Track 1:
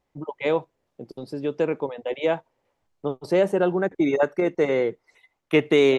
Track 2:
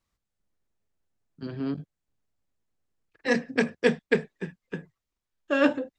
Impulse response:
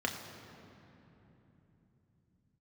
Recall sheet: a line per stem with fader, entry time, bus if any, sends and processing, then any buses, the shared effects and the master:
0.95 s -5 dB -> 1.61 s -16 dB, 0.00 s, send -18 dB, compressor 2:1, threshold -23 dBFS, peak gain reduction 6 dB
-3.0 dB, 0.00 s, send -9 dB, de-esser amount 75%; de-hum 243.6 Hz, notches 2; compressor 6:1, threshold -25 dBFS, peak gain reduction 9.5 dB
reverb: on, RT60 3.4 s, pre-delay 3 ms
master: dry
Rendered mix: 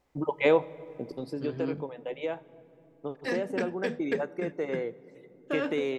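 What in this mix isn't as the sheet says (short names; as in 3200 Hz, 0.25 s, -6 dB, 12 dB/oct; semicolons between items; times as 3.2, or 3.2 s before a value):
stem 1 -5.0 dB -> +2.0 dB; stem 2: send off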